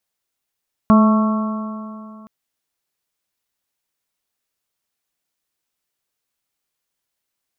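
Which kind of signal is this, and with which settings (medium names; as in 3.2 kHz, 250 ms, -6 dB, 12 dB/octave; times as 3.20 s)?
stretched partials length 1.37 s, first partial 215 Hz, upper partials -19/-11/-18/-7.5/-17.5 dB, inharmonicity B 0.0022, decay 2.59 s, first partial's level -7.5 dB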